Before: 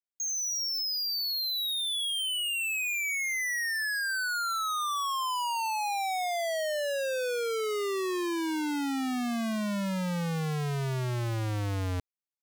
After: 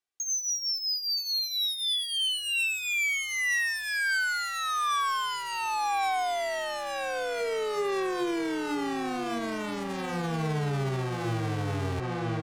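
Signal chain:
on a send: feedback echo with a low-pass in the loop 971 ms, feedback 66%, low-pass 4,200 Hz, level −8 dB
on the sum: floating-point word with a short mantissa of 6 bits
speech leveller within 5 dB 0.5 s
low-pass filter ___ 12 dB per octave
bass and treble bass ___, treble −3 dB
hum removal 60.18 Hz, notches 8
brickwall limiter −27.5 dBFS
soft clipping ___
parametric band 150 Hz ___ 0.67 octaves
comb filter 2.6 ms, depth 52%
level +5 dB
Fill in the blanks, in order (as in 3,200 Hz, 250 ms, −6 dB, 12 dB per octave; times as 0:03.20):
9,900 Hz, −8 dB, −31 dBFS, +10.5 dB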